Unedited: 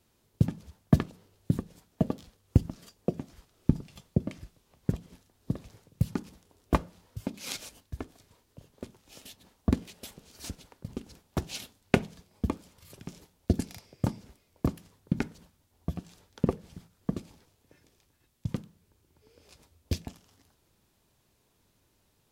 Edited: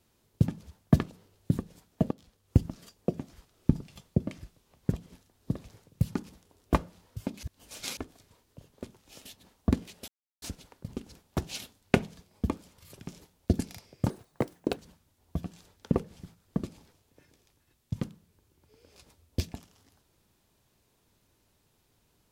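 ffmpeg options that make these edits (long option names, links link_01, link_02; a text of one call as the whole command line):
ffmpeg -i in.wav -filter_complex "[0:a]asplit=8[link_01][link_02][link_03][link_04][link_05][link_06][link_07][link_08];[link_01]atrim=end=2.11,asetpts=PTS-STARTPTS,afade=type=out:start_time=2.106:duration=0.004:curve=hsin:silence=0.223872[link_09];[link_02]atrim=start=2.11:end=7.432,asetpts=PTS-STARTPTS,afade=type=in:duration=0.47:silence=0.223872[link_10];[link_03]atrim=start=7.428:end=7.972,asetpts=PTS-STARTPTS,areverse[link_11];[link_04]atrim=start=7.968:end=10.08,asetpts=PTS-STARTPTS,afade=type=out:start_time=2.108:duration=0.004:curve=hsin[link_12];[link_05]atrim=start=10.08:end=10.42,asetpts=PTS-STARTPTS,volume=0[link_13];[link_06]atrim=start=10.42:end=14.104,asetpts=PTS-STARTPTS,afade=type=in:duration=0.004:curve=hsin[link_14];[link_07]atrim=start=14.1:end=15.3,asetpts=PTS-STARTPTS,asetrate=78939,aresample=44100,atrim=end_sample=29564,asetpts=PTS-STARTPTS[link_15];[link_08]atrim=start=15.296[link_16];[link_09][link_10]concat=n=2:v=0:a=1[link_17];[link_17][link_11]acrossfade=duration=0.004:curve1=hsin:curve2=hsin[link_18];[link_12][link_13][link_14]concat=n=3:v=0:a=1[link_19];[link_18][link_19]acrossfade=duration=0.004:curve1=hsin:curve2=hsin[link_20];[link_20][link_15]acrossfade=duration=0.004:curve1=hsin:curve2=hsin[link_21];[link_21][link_16]acrossfade=duration=0.004:curve1=hsin:curve2=hsin" out.wav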